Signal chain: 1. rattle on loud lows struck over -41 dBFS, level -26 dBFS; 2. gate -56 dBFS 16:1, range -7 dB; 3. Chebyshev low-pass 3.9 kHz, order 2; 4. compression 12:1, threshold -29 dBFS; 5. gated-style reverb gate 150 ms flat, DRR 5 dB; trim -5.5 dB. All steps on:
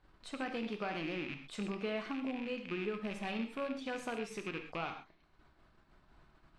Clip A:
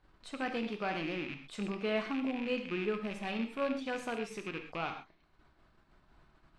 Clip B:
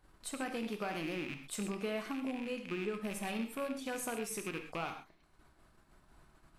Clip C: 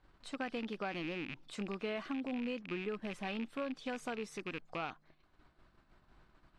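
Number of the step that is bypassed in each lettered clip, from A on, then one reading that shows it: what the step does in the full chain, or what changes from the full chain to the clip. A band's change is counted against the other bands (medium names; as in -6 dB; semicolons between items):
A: 4, mean gain reduction 1.5 dB; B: 3, 8 kHz band +12.5 dB; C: 5, loudness change -1.0 LU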